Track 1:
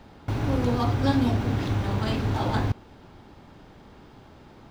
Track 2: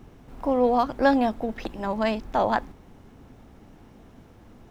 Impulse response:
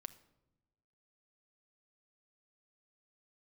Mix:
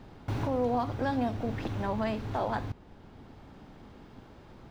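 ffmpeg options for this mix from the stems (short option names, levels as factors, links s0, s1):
-filter_complex "[0:a]volume=0.596[s0];[1:a]lowpass=2900,alimiter=limit=0.141:level=0:latency=1:release=331,volume=0.631,asplit=2[s1][s2];[s2]apad=whole_len=207594[s3];[s0][s3]sidechaincompress=threshold=0.0224:ratio=8:attack=16:release=1280[s4];[s4][s1]amix=inputs=2:normalize=0"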